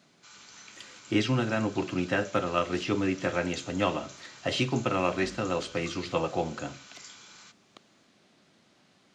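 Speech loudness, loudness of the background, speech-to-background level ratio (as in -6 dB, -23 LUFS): -29.5 LUFS, -48.0 LUFS, 18.5 dB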